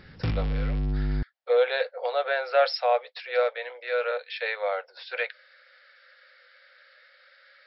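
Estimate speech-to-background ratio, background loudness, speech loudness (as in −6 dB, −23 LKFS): 2.5 dB, −30.0 LKFS, −27.5 LKFS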